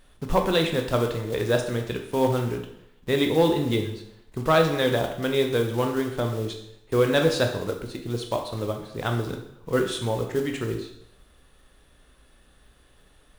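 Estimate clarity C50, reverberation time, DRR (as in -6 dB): 7.0 dB, 0.75 s, 3.5 dB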